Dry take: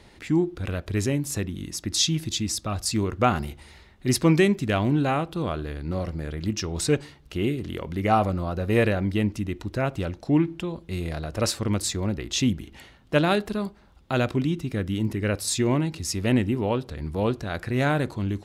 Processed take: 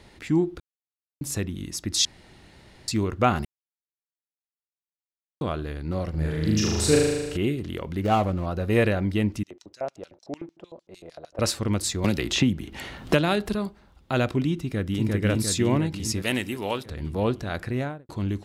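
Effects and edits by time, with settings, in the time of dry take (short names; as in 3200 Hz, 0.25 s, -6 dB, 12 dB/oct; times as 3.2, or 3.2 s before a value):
0.6–1.21 mute
2.05–2.88 room tone
3.45–5.41 mute
6.1–7.37 flutter echo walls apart 6.5 m, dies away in 1.3 s
8.01–8.46 median filter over 25 samples
9.43–11.39 LFO band-pass square 6.6 Hz 600–5800 Hz
12.04–13.55 three-band squash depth 100%
14.58–15.07 echo throw 0.35 s, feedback 65%, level -1 dB
16.22–16.86 tilt +3.5 dB/oct
17.6–18.09 studio fade out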